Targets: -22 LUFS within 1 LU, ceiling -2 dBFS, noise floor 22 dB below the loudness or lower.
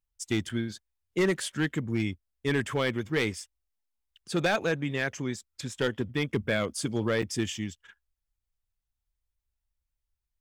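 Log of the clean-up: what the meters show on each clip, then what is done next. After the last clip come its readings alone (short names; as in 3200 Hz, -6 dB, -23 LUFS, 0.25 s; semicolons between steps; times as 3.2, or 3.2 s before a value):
clipped 0.5%; flat tops at -19.0 dBFS; dropouts 2; longest dropout 5.5 ms; loudness -30.0 LUFS; peak -19.0 dBFS; loudness target -22.0 LUFS
-> clip repair -19 dBFS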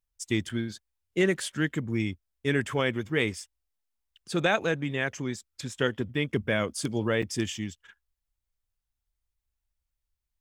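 clipped 0.0%; dropouts 2; longest dropout 5.5 ms
-> interpolate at 0.49/7.22, 5.5 ms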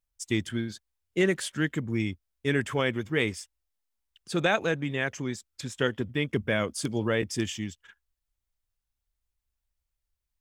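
dropouts 0; loudness -29.5 LUFS; peak -11.0 dBFS; loudness target -22.0 LUFS
-> gain +7.5 dB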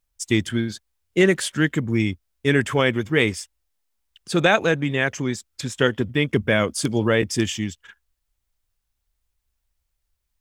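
loudness -22.0 LUFS; peak -3.5 dBFS; noise floor -77 dBFS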